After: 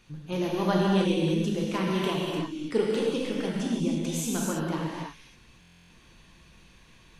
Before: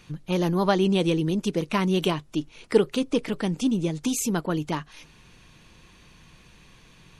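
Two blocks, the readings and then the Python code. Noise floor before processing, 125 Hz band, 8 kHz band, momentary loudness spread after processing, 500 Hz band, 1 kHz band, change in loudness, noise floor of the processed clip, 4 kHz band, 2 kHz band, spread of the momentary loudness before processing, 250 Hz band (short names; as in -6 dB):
-54 dBFS, -2.5 dB, -2.5 dB, 8 LU, -3.0 dB, -3.0 dB, -2.5 dB, -56 dBFS, -2.5 dB, -2.0 dB, 7 LU, -2.5 dB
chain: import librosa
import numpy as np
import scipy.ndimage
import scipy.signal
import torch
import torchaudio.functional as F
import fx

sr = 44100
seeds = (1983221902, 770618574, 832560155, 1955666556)

y = fx.rev_gated(x, sr, seeds[0], gate_ms=350, shape='flat', drr_db=-4.0)
y = fx.buffer_glitch(y, sr, at_s=(5.6,), block=1024, repeats=12)
y = F.gain(torch.from_numpy(y), -8.0).numpy()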